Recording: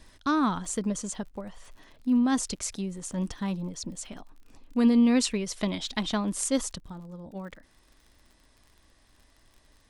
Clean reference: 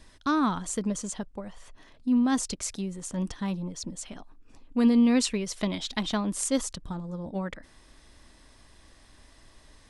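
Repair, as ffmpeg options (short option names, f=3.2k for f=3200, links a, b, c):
-af "adeclick=t=4,asetnsamples=n=441:p=0,asendcmd='6.8 volume volume 6.5dB',volume=0dB"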